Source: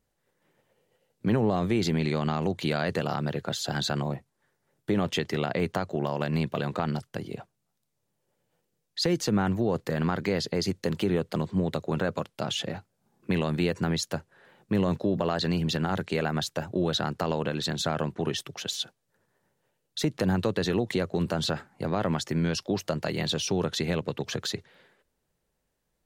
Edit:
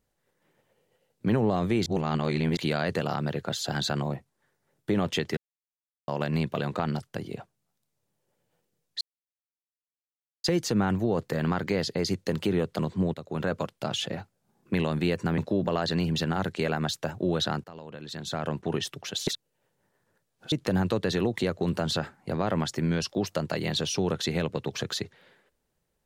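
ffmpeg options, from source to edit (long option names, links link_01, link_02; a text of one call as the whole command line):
ffmpeg -i in.wav -filter_complex "[0:a]asplit=11[link_01][link_02][link_03][link_04][link_05][link_06][link_07][link_08][link_09][link_10][link_11];[link_01]atrim=end=1.862[link_12];[link_02]atrim=start=1.858:end=2.572,asetpts=PTS-STARTPTS,areverse[link_13];[link_03]atrim=start=2.568:end=5.37,asetpts=PTS-STARTPTS,afade=type=out:start_time=2.798:duration=0.004:curve=hsin[link_14];[link_04]atrim=start=5.37:end=6.08,asetpts=PTS-STARTPTS,volume=0[link_15];[link_05]atrim=start=6.08:end=9.01,asetpts=PTS-STARTPTS,afade=type=in:duration=0.004:curve=hsin,afade=type=out:start_time=2.926:duration=0.004:curve=hsin,apad=pad_dur=1.43[link_16];[link_06]atrim=start=9.01:end=11.71,asetpts=PTS-STARTPTS,afade=type=in:duration=0.004:curve=hsin,afade=type=out:start_time=2.696:duration=0.004:curve=hsin:silence=0.211349[link_17];[link_07]atrim=start=11.71:end=13.952,asetpts=PTS-STARTPTS,afade=type=in:duration=0.36:silence=0.211349[link_18];[link_08]atrim=start=14.908:end=17.17,asetpts=PTS-STARTPTS,afade=type=out:start_time=2.258:duration=0.004:curve=hsin:silence=0.141254[link_19];[link_09]atrim=start=17.17:end=18.802,asetpts=PTS-STARTPTS,afade=type=in:duration=0.94:curve=qua:silence=0.141254[link_20];[link_10]atrim=start=18.798:end=20.052,asetpts=PTS-STARTPTS,areverse[link_21];[link_11]atrim=start=20.048[link_22];[link_12][link_13]acrossfade=duration=0.004:curve1=hsin:curve2=hsin[link_23];[link_14][link_15][link_16][link_17][link_18]concat=n=5:v=0:a=1[link_24];[link_23][link_24]acrossfade=duration=0.004:curve1=hsin:curve2=hsin[link_25];[link_19][link_20]concat=n=2:v=0:a=1[link_26];[link_25][link_26]acrossfade=duration=0.004:curve1=hsin:curve2=hsin[link_27];[link_27][link_21]acrossfade=duration=0.004:curve1=hsin:curve2=hsin[link_28];[link_28][link_22]acrossfade=duration=0.004:curve1=hsin:curve2=hsin" out.wav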